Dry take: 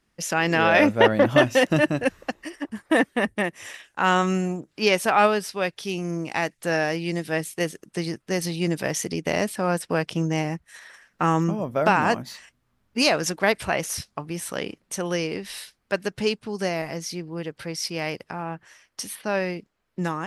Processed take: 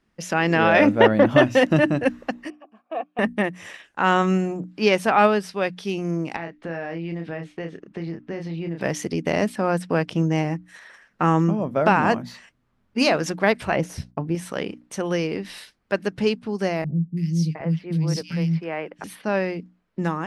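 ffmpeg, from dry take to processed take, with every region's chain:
ffmpeg -i in.wav -filter_complex "[0:a]asettb=1/sr,asplit=3[link_01][link_02][link_03];[link_01]atrim=end=2.504[link_04];[link_02]atrim=start=2.5:end=3.19,asetpts=PTS-STARTPTS,afade=type=in:duration=0.004:curve=qsin,afade=type=out:start_time=0.686:duration=0.004:curve=qsin,asplit=3[link_05][link_06][link_07];[link_05]bandpass=frequency=730:width_type=q:width=8,volume=0dB[link_08];[link_06]bandpass=frequency=1090:width_type=q:width=8,volume=-6dB[link_09];[link_07]bandpass=frequency=2440:width_type=q:width=8,volume=-9dB[link_10];[link_08][link_09][link_10]amix=inputs=3:normalize=0,bandreject=frequency=280:width=7.1[link_11];[link_03]atrim=start=3.186[link_12];[link_04][link_11]acrossfade=duration=0.004:curve1=hsin:curve2=qsin[link_13];[link_13][link_12]acrossfade=duration=0.004:curve1=qsin:curve2=hsin,asettb=1/sr,asplit=3[link_14][link_15][link_16];[link_14]atrim=end=6.364[link_17];[link_15]atrim=start=6.36:end=8.81,asetpts=PTS-STARTPTS,afade=type=in:duration=0.004:curve=qsin,afade=type=out:start_time=2.446:duration=0.004:curve=qsin,asplit=2[link_18][link_19];[link_19]adelay=30,volume=-6dB[link_20];[link_18][link_20]amix=inputs=2:normalize=0,atrim=end_sample=108045,acompressor=threshold=-30dB:ratio=4:attack=3.2:release=140:knee=1:detection=peak,lowpass=2900[link_21];[link_16]atrim=start=8.806[link_22];[link_17][link_21]acrossfade=duration=0.004:curve1=hsin:curve2=qsin[link_23];[link_23][link_22]acrossfade=duration=0.004:curve1=qsin:curve2=hsin,asettb=1/sr,asplit=3[link_24][link_25][link_26];[link_24]atrim=end=13.764[link_27];[link_25]atrim=start=13.76:end=14.35,asetpts=PTS-STARTPTS,afade=type=in:duration=0.004:curve=qsin,afade=type=out:start_time=0.586:duration=0.004:curve=qsin,agate=range=-33dB:threshold=-58dB:ratio=3:release=100:detection=peak,tiltshelf=frequency=870:gain=6,bandreject=frequency=1200:width=7.9[link_28];[link_26]atrim=start=14.346[link_29];[link_27][link_28]acrossfade=duration=0.004:curve1=hsin:curve2=qsin[link_30];[link_30][link_29]acrossfade=duration=0.004:curve1=qsin:curve2=hsin,asettb=1/sr,asplit=3[link_31][link_32][link_33];[link_31]atrim=end=16.844[link_34];[link_32]atrim=start=16.84:end=19.04,asetpts=PTS-STARTPTS,afade=type=in:duration=0.004:curve=qsin,afade=type=out:start_time=2.196:duration=0.004:curve=qsin,equalizer=frequency=160:width_type=o:width=0.5:gain=13.5,acrossover=split=300|2700[link_35][link_36][link_37];[link_37]adelay=330[link_38];[link_36]adelay=710[link_39];[link_35][link_39][link_38]amix=inputs=3:normalize=0,atrim=end_sample=97020[link_40];[link_33]atrim=start=19.036[link_41];[link_34][link_40]acrossfade=duration=0.004:curve1=hsin:curve2=qsin[link_42];[link_42][link_41]acrossfade=duration=0.004:curve1=qsin:curve2=hsin,lowpass=frequency=3100:poles=1,equalizer=frequency=220:width=1.2:gain=3.5,bandreject=frequency=60:width_type=h:width=6,bandreject=frequency=120:width_type=h:width=6,bandreject=frequency=180:width_type=h:width=6,bandreject=frequency=240:width_type=h:width=6,bandreject=frequency=300:width_type=h:width=6,volume=1.5dB" out.wav

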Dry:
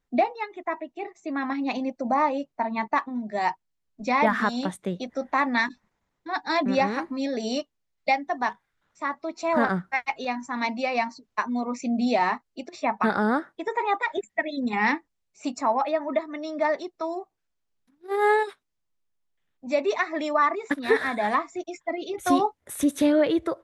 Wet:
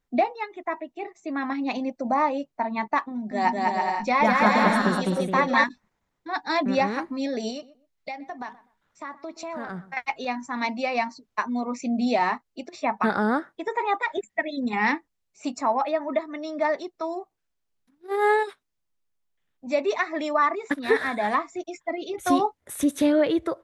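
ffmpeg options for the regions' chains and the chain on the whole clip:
ffmpeg -i in.wav -filter_complex "[0:a]asettb=1/sr,asplit=3[link_01][link_02][link_03];[link_01]atrim=end=3.114[link_04];[link_02]atrim=start=3.11:end=5.64,asetpts=PTS-STARTPTS,afade=type=in:duration=0.004:curve=qsin,afade=type=out:start_time=2.526:duration=0.004:curve=qsin,aecho=1:1:5.5:0.38,atrim=end_sample=111573,aecho=1:1:200|330|414.5|469.4|505.1|528.3:0.794|0.631|0.501|0.398|0.316|0.251,atrim=end_sample=111573[link_05];[link_03]atrim=start=5.636[link_06];[link_04][link_05]acrossfade=duration=0.004:curve1=hsin:curve2=qsin[link_07];[link_07][link_06]acrossfade=duration=0.004:curve1=qsin:curve2=hsin,asettb=1/sr,asplit=3[link_08][link_09][link_10];[link_08]atrim=end=7.504[link_11];[link_09]atrim=start=7.5:end=9.97,asetpts=PTS-STARTPTS,afade=type=in:duration=0.004:curve=qsin,afade=type=out:start_time=2.466:duration=0.004:curve=qsin,acompressor=threshold=-32dB:ratio=4:attack=3.2:release=140:knee=1:detection=peak,asplit=2[link_12][link_13];[link_13]adelay=124,lowpass=frequency=1400:poles=1,volume=-16.5dB,asplit=2[link_14][link_15];[link_15]adelay=124,lowpass=frequency=1400:poles=1,volume=0.24[link_16];[link_12][link_14][link_16]amix=inputs=3:normalize=0,atrim=end_sample=108927[link_17];[link_10]atrim=start=9.966[link_18];[link_11][link_17]acrossfade=duration=0.004:curve1=hsin:curve2=qsin[link_19];[link_19][link_18]acrossfade=duration=0.004:curve1=qsin:curve2=hsin" out.wav

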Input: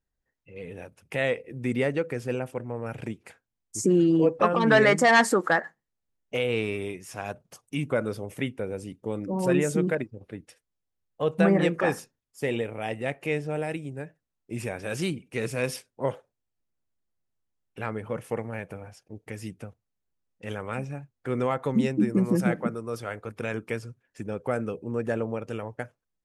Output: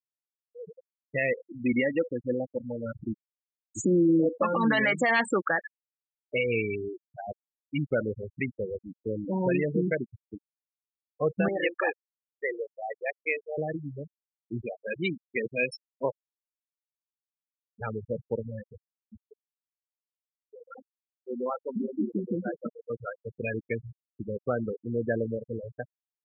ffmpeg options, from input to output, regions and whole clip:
ffmpeg -i in.wav -filter_complex "[0:a]asettb=1/sr,asplit=3[link_01][link_02][link_03];[link_01]atrim=end=1.384[link_04];[link_02]atrim=start=1.38:end=4.92,asetpts=PTS-STARTPTS,afade=type=in:duration=0.004:curve=qsin,afade=type=out:start_time=3.536:duration=0.004:curve=qsin,asubboost=boost=2:cutoff=200,aecho=1:1:3.6:0.57,atrim=end_sample=156114[link_05];[link_03]atrim=start=4.916[link_06];[link_04][link_05]acrossfade=duration=0.004:curve1=hsin:curve2=qsin[link_07];[link_07][link_06]acrossfade=duration=0.004:curve1=qsin:curve2=hsin,asettb=1/sr,asplit=3[link_08][link_09][link_10];[link_08]atrim=end=11.484[link_11];[link_09]atrim=start=11.48:end=13.58,asetpts=PTS-STARTPTS,afade=type=in:duration=0.004:curve=qsin,afade=type=out:start_time=2.096:duration=0.004:curve=qsin,highpass=470,asoftclip=type=hard:threshold=-17dB[link_12];[link_10]atrim=start=13.576[link_13];[link_11][link_12]acrossfade=duration=0.004:curve1=hsin:curve2=qsin[link_14];[link_14][link_13]acrossfade=duration=0.004:curve1=qsin:curve2=hsin,asettb=1/sr,asplit=3[link_15][link_16][link_17];[link_15]atrim=end=14.624[link_18];[link_16]atrim=start=14.62:end=17.81,asetpts=PTS-STARTPTS,afade=type=in:duration=0.004:curve=qsin,afade=type=out:start_time=3.186:duration=0.004:curve=qsin,highpass=180,lowpass=7900,aemphasis=mode=production:type=cd[link_19];[link_17]atrim=start=17.806[link_20];[link_18][link_19]acrossfade=duration=0.004:curve1=hsin:curve2=qsin[link_21];[link_21][link_20]acrossfade=duration=0.004:curve1=qsin:curve2=hsin,asettb=1/sr,asplit=3[link_22][link_23][link_24];[link_22]atrim=end=19.224[link_25];[link_23]atrim=start=19.22:end=22.9,asetpts=PTS-STARTPTS,afade=type=in:duration=0.004:curve=qsin,afade=type=out:start_time=3.676:duration=0.004:curve=qsin,highpass=230,flanger=delay=4.5:depth=8.5:regen=-48:speed=1.6:shape=triangular[link_26];[link_24]atrim=start=22.896[link_27];[link_25][link_26]acrossfade=duration=0.004:curve1=hsin:curve2=qsin[link_28];[link_28][link_27]acrossfade=duration=0.004:curve1=qsin:curve2=hsin,afftfilt=real='re*gte(hypot(re,im),0.0891)':imag='im*gte(hypot(re,im),0.0891)':win_size=1024:overlap=0.75,equalizer=frequency=2400:width=1.5:gain=8,alimiter=limit=-16dB:level=0:latency=1:release=143" out.wav

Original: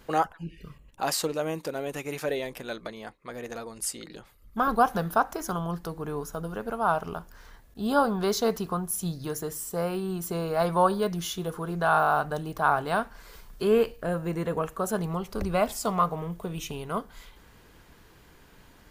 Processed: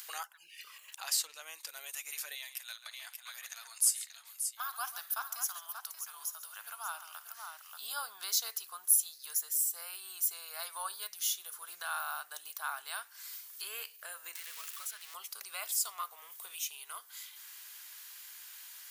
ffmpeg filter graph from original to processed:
ffmpeg -i in.wav -filter_complex "[0:a]asettb=1/sr,asplit=3[link_01][link_02][link_03];[link_01]atrim=end=0.594[link_04];[link_02]atrim=start=0.59:end=1.68,asetpts=PTS-STARTPTS,afade=type=in:duration=0.004:curve=qsin,afade=type=out:start_time=1.086:duration=0.004:curve=qsin,highshelf=frequency=8400:gain=-9.5,acompressor=mode=upward:threshold=-35dB:ratio=2.5:attack=3.2:release=140:knee=2.83:detection=peak[link_05];[link_03]atrim=start=1.676[link_06];[link_04][link_05]acrossfade=duration=0.004:curve1=hsin:curve2=qsin[link_07];[link_07][link_06]acrossfade=duration=0.004:curve1=qsin:curve2=hsin,asettb=1/sr,asplit=3[link_08][link_09][link_10];[link_08]atrim=end=2.354[link_11];[link_09]atrim=start=2.35:end=7.82,asetpts=PTS-STARTPTS,afade=type=in:duration=0.004:curve=qsin,afade=type=out:start_time=5.466:duration=0.004:curve=qsin,highpass=frequency=660:width=0.5412,highpass=frequency=660:width=1.3066,aecho=1:1:53|137|583:0.126|0.168|0.376,atrim=end_sample=241227[link_12];[link_10]atrim=start=7.816[link_13];[link_11][link_12]acrossfade=duration=0.004:curve1=hsin:curve2=qsin[link_14];[link_14][link_13]acrossfade=duration=0.004:curve1=qsin:curve2=hsin,asettb=1/sr,asplit=3[link_15][link_16][link_17];[link_15]atrim=end=14.354[link_18];[link_16]atrim=start=14.35:end=15.14,asetpts=PTS-STARTPTS,afade=type=in:duration=0.004:curve=qsin,afade=type=out:start_time=0.786:duration=0.004:curve=qsin,aeval=exprs='val(0)+0.5*0.0266*sgn(val(0))':channel_layout=same,acrossover=split=150|1400|4600[link_19][link_20][link_21][link_22];[link_19]acompressor=threshold=-42dB:ratio=3[link_23];[link_20]acompressor=threshold=-40dB:ratio=3[link_24];[link_21]acompressor=threshold=-40dB:ratio=3[link_25];[link_22]acompressor=threshold=-51dB:ratio=3[link_26];[link_23][link_24][link_25][link_26]amix=inputs=4:normalize=0[link_27];[link_17]atrim=start=15.136[link_28];[link_18][link_27]acrossfade=duration=0.004:curve1=hsin:curve2=qsin[link_29];[link_29][link_28]acrossfade=duration=0.004:curve1=qsin:curve2=hsin,highpass=1100,aderivative,acompressor=mode=upward:threshold=-42dB:ratio=2.5,volume=3.5dB" out.wav

